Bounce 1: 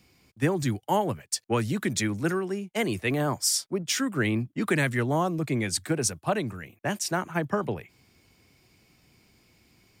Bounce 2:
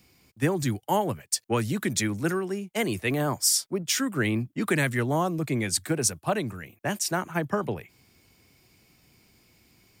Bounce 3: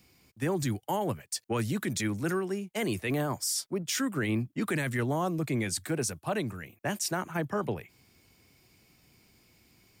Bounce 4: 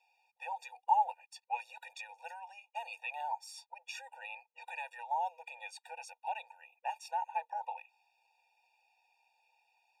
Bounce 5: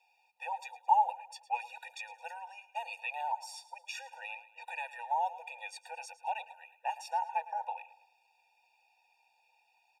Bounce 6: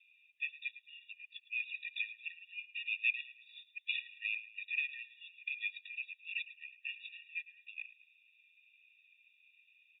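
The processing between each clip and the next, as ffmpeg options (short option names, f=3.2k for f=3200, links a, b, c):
-af "highshelf=f=9.6k:g=7.5"
-af "alimiter=limit=-19.5dB:level=0:latency=1:release=10,volume=-2dB"
-filter_complex "[0:a]asplit=3[a][b][c];[a]bandpass=f=300:t=q:w=8,volume=0dB[d];[b]bandpass=f=870:t=q:w=8,volume=-6dB[e];[c]bandpass=f=2.24k:t=q:w=8,volume=-9dB[f];[d][e][f]amix=inputs=3:normalize=0,afftfilt=real='re*eq(mod(floor(b*sr/1024/480),2),1)':imag='im*eq(mod(floor(b*sr/1024/480),2),1)':win_size=1024:overlap=0.75,volume=14.5dB"
-af "aecho=1:1:109|218|327|436:0.15|0.0643|0.0277|0.0119,volume=2.5dB"
-af "asuperpass=centerf=2700:order=20:qfactor=1.5,volume=7dB" -ar 22050 -c:a wmav2 -b:a 32k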